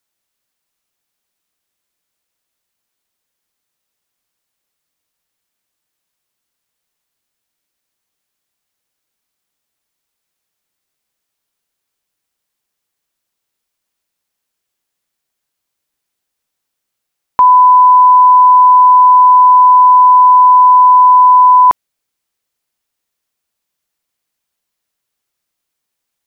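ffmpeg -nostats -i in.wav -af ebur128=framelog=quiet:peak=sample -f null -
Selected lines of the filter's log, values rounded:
Integrated loudness:
  I:          -5.5 LUFS
  Threshold: -15.7 LUFS
Loudness range:
  LRA:         8.6 LU
  Threshold: -27.5 LUFS
  LRA low:   -13.9 LUFS
  LRA high:   -5.2 LUFS
Sample peak:
  Peak:       -2.2 dBFS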